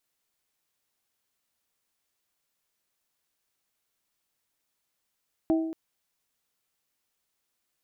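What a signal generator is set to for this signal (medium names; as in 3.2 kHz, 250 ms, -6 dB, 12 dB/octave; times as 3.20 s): glass hit bell, length 0.23 s, lowest mode 323 Hz, modes 3, decay 0.93 s, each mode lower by 8 dB, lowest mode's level -19 dB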